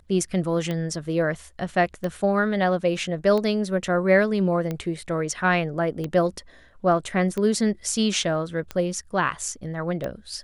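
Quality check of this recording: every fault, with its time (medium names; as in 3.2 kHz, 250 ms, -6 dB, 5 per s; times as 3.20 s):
tick 45 rpm -16 dBFS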